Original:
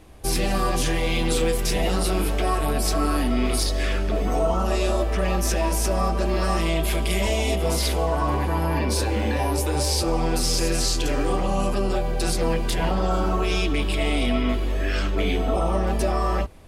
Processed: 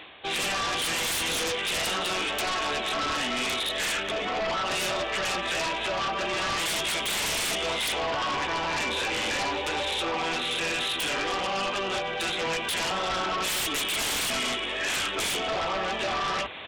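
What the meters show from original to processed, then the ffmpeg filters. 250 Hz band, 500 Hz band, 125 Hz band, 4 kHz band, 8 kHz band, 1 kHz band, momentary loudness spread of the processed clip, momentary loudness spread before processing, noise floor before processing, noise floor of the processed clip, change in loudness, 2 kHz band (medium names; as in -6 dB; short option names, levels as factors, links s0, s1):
-11.5 dB, -7.0 dB, -18.5 dB, +3.5 dB, -2.0 dB, -2.0 dB, 2 LU, 2 LU, -24 dBFS, -32 dBFS, -3.5 dB, +3.5 dB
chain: -af "highpass=63,aderivative,aresample=8000,aresample=44100,areverse,acompressor=mode=upward:threshold=0.00316:ratio=2.5,areverse,aeval=exprs='0.0562*sin(PI/2*7.08*val(0)/0.0562)':c=same"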